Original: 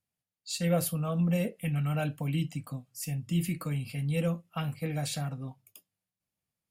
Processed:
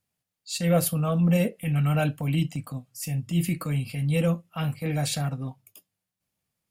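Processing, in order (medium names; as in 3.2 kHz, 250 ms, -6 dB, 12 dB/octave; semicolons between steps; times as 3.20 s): transient shaper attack -7 dB, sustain -3 dB; trim +7 dB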